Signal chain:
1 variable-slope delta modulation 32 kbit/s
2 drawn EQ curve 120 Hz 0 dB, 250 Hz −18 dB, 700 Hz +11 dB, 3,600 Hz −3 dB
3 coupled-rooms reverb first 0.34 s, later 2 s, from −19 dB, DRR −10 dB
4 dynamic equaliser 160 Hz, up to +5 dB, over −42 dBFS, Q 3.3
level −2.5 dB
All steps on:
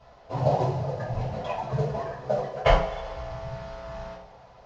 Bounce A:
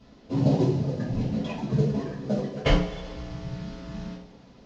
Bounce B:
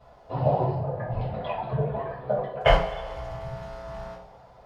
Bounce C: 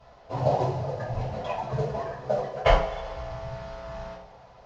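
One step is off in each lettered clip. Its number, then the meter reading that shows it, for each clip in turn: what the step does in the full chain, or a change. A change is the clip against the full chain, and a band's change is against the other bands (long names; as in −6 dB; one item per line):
2, 250 Hz band +13.0 dB
1, 4 kHz band +2.5 dB
4, 250 Hz band −2.0 dB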